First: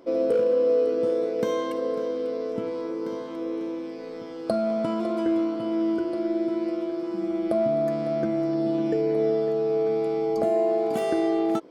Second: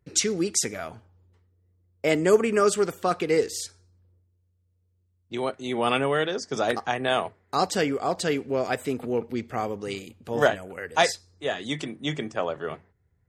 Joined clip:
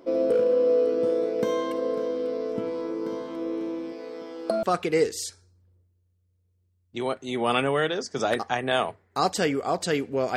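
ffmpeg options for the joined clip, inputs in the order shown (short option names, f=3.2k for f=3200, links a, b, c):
-filter_complex "[0:a]asettb=1/sr,asplit=3[a][b][c];[a]atrim=end=3.924[d];[b]atrim=start=3.92:end=4.63,asetpts=PTS-STARTPTS,afade=t=in:d=0.004:c=qsin,afade=t=out:st=0.706:d=0.004:c=qsin,highpass=280[e];[c]atrim=start=4.626[f];[d][e]acrossfade=d=0.004:c1=hsin:c2=qsin[g];[g][f]acrossfade=d=0.004:c1=qsin:c2=hsin,apad=whole_dur=10.36,atrim=end=10.36,atrim=end=4.632[h];[1:a]atrim=start=2.998:end=8.73[i];[h][i]acrossfade=d=0.004:c1=hsin:c2=hsin"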